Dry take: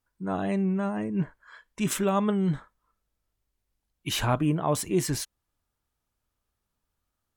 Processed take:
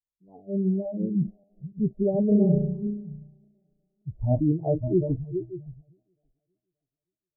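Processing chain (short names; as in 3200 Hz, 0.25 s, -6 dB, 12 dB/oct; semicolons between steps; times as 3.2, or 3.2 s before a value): regenerating reverse delay 0.287 s, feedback 51%, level -6 dB; spectral noise reduction 27 dB; steep low-pass 700 Hz 72 dB/oct; 2.28–4.1 flutter echo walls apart 5.8 m, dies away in 0.64 s; gain +2.5 dB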